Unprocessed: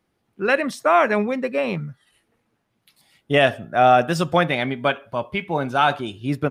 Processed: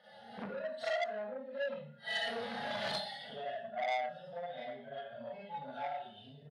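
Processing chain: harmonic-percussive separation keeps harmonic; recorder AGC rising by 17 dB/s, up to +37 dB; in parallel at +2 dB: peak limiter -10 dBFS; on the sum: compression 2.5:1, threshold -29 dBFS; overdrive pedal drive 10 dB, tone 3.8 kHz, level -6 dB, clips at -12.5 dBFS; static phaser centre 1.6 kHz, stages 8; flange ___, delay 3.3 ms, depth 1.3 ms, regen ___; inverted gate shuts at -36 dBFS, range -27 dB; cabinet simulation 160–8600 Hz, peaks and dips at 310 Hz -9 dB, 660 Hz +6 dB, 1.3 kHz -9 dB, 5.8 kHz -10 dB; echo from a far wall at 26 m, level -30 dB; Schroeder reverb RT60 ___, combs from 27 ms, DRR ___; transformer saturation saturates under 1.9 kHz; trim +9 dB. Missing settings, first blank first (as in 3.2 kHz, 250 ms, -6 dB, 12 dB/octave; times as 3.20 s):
0.71 Hz, +37%, 0.5 s, -8 dB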